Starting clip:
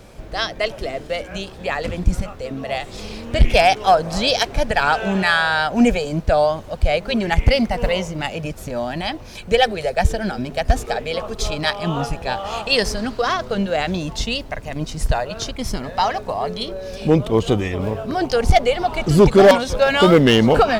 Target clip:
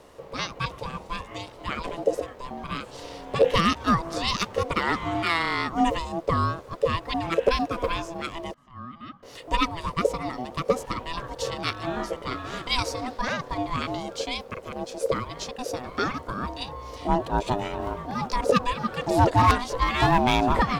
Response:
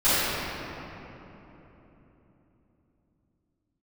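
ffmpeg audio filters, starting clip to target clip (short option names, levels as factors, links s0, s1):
-filter_complex "[0:a]asettb=1/sr,asplit=3[s0][s1][s2];[s0]atrim=end=8.544[s3];[s1]atrim=start=8.54:end=9.23,asetpts=PTS-STARTPTS,afade=t=in:d=0.004:c=qsin,afade=t=out:st=0.686:d=0.004:c=qsin,asplit=3[s4][s5][s6];[s4]bandpass=f=730:t=q:w=8,volume=1[s7];[s5]bandpass=f=1090:t=q:w=8,volume=0.501[s8];[s6]bandpass=f=2440:t=q:w=8,volume=0.355[s9];[s7][s8][s9]amix=inputs=3:normalize=0[s10];[s2]atrim=start=9.226[s11];[s3][s10]acrossfade=d=0.004:c1=hsin:c2=qsin[s12];[s12][s11]acrossfade=d=0.004:c1=qsin:c2=hsin,aeval=exprs='val(0)*sin(2*PI*500*n/s)':c=same,volume=0.562"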